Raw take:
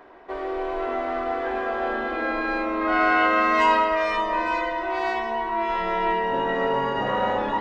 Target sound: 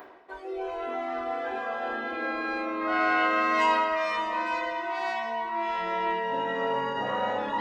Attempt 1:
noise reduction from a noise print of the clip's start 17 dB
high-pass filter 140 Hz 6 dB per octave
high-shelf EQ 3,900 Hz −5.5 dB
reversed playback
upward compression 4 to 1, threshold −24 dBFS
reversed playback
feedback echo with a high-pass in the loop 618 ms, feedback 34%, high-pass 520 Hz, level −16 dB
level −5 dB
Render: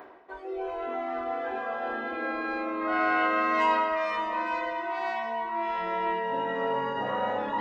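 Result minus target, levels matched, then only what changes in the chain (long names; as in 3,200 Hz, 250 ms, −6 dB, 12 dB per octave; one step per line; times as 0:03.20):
8,000 Hz band −7.0 dB
change: high-shelf EQ 3,900 Hz +5 dB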